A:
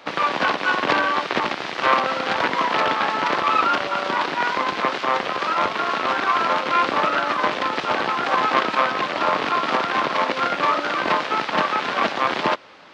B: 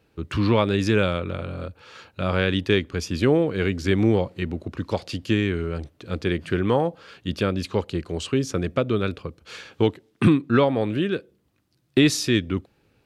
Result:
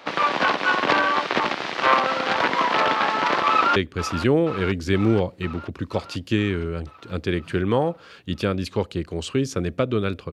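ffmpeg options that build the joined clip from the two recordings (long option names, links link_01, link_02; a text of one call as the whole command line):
ffmpeg -i cue0.wav -i cue1.wav -filter_complex "[0:a]apad=whole_dur=10.32,atrim=end=10.32,atrim=end=3.762[link_01];[1:a]atrim=start=2.738:end=9.3[link_02];[link_01][link_02]acrossfade=duration=0.004:curve1=hsin:curve2=hsin,asplit=2[link_03][link_04];[link_04]afade=type=in:start_time=3.5:duration=0.01,afade=type=out:start_time=3.76:duration=0.01,aecho=0:1:480|960|1440|1920|2400|2880|3360|3840|4320|4800:0.251189|0.175832|0.123082|0.0861577|0.0603104|0.0422173|0.0295521|0.0206865|0.0144805|0.0101364[link_05];[link_03][link_05]amix=inputs=2:normalize=0" out.wav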